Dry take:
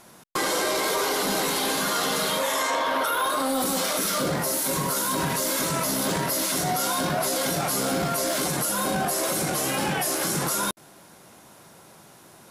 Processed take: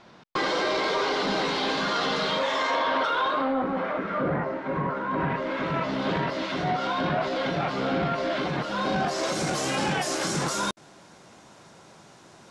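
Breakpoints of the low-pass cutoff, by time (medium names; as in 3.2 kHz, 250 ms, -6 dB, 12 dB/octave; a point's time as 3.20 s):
low-pass 24 dB/octave
3.18 s 4.6 kHz
3.62 s 2 kHz
5.01 s 2 kHz
6.05 s 3.5 kHz
8.56 s 3.5 kHz
9.48 s 7.4 kHz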